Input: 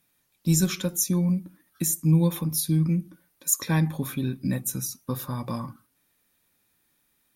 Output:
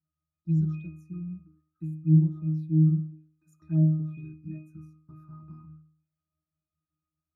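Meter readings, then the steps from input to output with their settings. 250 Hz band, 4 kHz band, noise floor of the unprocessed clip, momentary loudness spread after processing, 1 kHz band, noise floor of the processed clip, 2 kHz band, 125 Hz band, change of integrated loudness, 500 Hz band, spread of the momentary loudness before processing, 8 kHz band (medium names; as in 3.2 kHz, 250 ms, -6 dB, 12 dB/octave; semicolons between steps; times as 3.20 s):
-2.5 dB, under -40 dB, -70 dBFS, 20 LU, under -20 dB, under -85 dBFS, under -20 dB, 0.0 dB, -0.5 dB, under -10 dB, 10 LU, under -40 dB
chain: pitch-class resonator D#, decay 0.55 s; touch-sensitive phaser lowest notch 470 Hz, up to 2.5 kHz, full sweep at -29 dBFS; trim +6 dB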